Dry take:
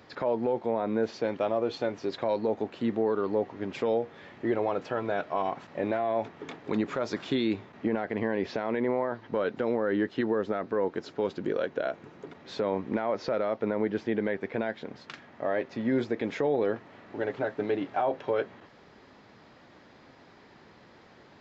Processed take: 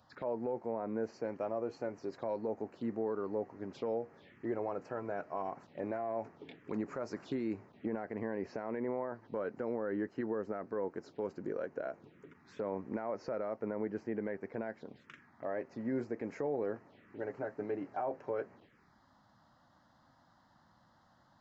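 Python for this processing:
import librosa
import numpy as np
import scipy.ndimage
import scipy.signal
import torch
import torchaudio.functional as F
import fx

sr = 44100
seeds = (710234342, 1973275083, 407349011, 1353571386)

y = fx.env_phaser(x, sr, low_hz=340.0, high_hz=3500.0, full_db=-30.0)
y = y * 10.0 ** (-8.5 / 20.0)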